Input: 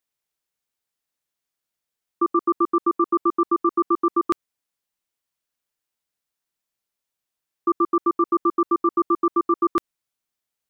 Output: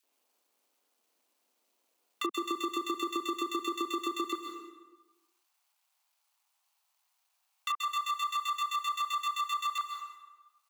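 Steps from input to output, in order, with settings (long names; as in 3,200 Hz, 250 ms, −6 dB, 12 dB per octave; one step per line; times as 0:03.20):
running median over 25 samples
Butterworth high-pass 220 Hz 36 dB per octave, from 0:04.31 760 Hz
downward compressor, threshold −22 dBFS, peak gain reduction 5.5 dB
spectral tilt +2.5 dB per octave
multiband delay without the direct sound highs, lows 30 ms, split 1,700 Hz
dense smooth reverb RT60 0.83 s, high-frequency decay 0.8×, pre-delay 120 ms, DRR 7.5 dB
multiband upward and downward compressor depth 70%
level −5 dB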